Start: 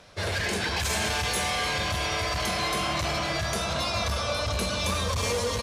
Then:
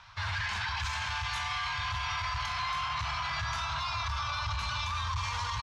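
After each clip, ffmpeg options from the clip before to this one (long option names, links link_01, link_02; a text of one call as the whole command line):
ffmpeg -i in.wav -af "firequalizer=gain_entry='entry(120,0);entry(180,-16);entry(300,-27);entry(480,-28);entry(920,6);entry(1900,0);entry(3000,0);entry(6100,-6);entry(9500,-21)':delay=0.05:min_phase=1,alimiter=level_in=1.5dB:limit=-24dB:level=0:latency=1:release=13,volume=-1.5dB" out.wav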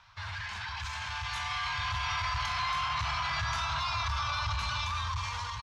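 ffmpeg -i in.wav -af "dynaudnorm=framelen=550:gausssize=5:maxgain=7dB,volume=-5.5dB" out.wav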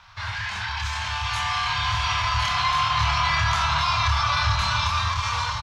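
ffmpeg -i in.wav -filter_complex "[0:a]asplit=2[link_01][link_02];[link_02]adelay=27,volume=-3.5dB[link_03];[link_01][link_03]amix=inputs=2:normalize=0,aecho=1:1:1060:0.422,volume=7.5dB" out.wav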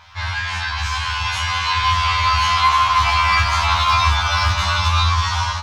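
ffmpeg -i in.wav -af "volume=15dB,asoftclip=hard,volume=-15dB,afftfilt=real='re*2*eq(mod(b,4),0)':imag='im*2*eq(mod(b,4),0)':win_size=2048:overlap=0.75,volume=8dB" out.wav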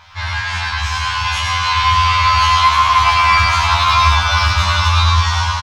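ffmpeg -i in.wav -af "aecho=1:1:106:0.562,volume=2dB" out.wav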